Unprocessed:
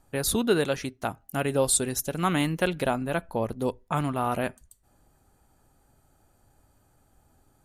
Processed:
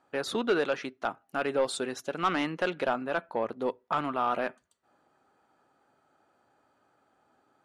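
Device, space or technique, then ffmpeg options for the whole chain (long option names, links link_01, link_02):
intercom: -af "highpass=310,lowpass=3600,equalizer=frequency=1300:width_type=o:width=0.53:gain=4.5,asoftclip=type=tanh:threshold=-17.5dB"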